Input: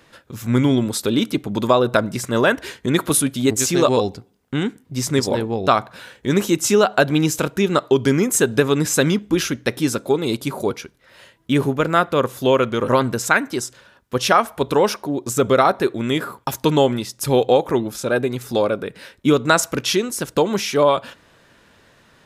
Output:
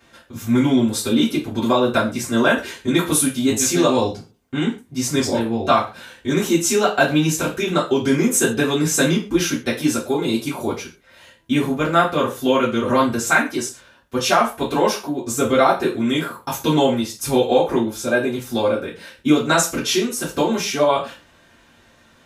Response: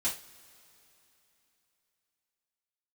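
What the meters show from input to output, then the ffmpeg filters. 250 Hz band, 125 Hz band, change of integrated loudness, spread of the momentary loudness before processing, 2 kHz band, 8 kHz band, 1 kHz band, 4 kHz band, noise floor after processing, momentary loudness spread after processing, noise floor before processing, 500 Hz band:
+1.5 dB, -2.5 dB, 0.0 dB, 8 LU, +0.5 dB, +1.5 dB, 0.0 dB, +0.5 dB, -53 dBFS, 8 LU, -55 dBFS, -1.5 dB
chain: -filter_complex "[1:a]atrim=start_sample=2205,atrim=end_sample=6615[a];[0:a][a]afir=irnorm=-1:irlink=0,volume=-4.5dB"

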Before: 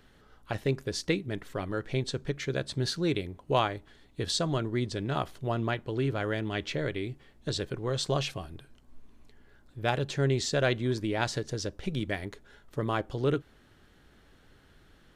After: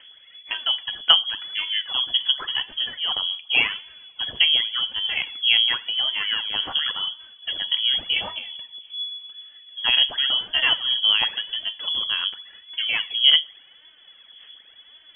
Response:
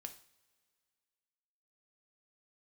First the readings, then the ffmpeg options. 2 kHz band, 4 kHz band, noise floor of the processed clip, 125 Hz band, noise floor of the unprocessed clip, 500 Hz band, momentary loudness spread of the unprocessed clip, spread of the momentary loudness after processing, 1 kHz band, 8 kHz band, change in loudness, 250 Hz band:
+10.5 dB, +21.0 dB, -51 dBFS, under -20 dB, -60 dBFS, -14.5 dB, 9 LU, 15 LU, 0.0 dB, under -40 dB, +10.5 dB, under -15 dB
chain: -filter_complex "[0:a]asplit=2[a][b];[1:a]atrim=start_sample=2205[c];[b][c]afir=irnorm=-1:irlink=0,volume=6dB[d];[a][d]amix=inputs=2:normalize=0,aphaser=in_gain=1:out_gain=1:delay=3.3:decay=0.63:speed=0.9:type=sinusoidal,lowpass=f=2.9k:t=q:w=0.5098,lowpass=f=2.9k:t=q:w=0.6013,lowpass=f=2.9k:t=q:w=0.9,lowpass=f=2.9k:t=q:w=2.563,afreqshift=-3400,volume=-2.5dB"

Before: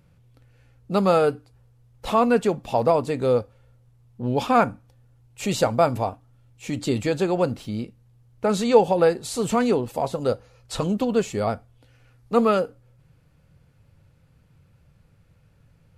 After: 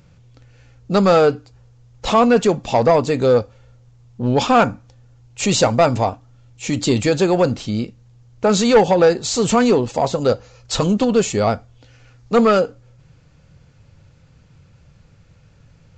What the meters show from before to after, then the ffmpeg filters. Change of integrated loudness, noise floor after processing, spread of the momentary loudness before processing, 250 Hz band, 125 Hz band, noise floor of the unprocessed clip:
+6.0 dB, -51 dBFS, 13 LU, +6.5 dB, +6.5 dB, -59 dBFS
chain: -af "highshelf=f=6.2k:g=11.5,aresample=16000,asoftclip=type=tanh:threshold=-13dB,aresample=44100,volume=7.5dB"

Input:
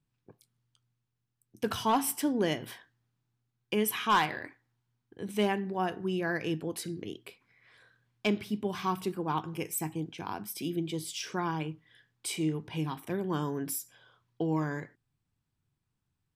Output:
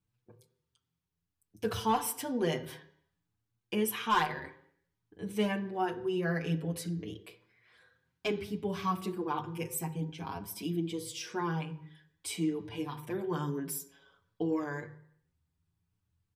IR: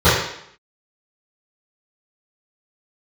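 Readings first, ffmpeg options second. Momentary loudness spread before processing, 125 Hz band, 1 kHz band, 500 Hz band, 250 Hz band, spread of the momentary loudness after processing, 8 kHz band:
13 LU, -0.5 dB, -2.0 dB, -1.0 dB, -2.0 dB, 12 LU, -3.0 dB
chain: -filter_complex "[0:a]asplit=2[a][b];[1:a]atrim=start_sample=2205,lowshelf=f=450:g=6[c];[b][c]afir=irnorm=-1:irlink=0,volume=-38.5dB[d];[a][d]amix=inputs=2:normalize=0,asplit=2[e][f];[f]adelay=6.5,afreqshift=0.55[g];[e][g]amix=inputs=2:normalize=1"

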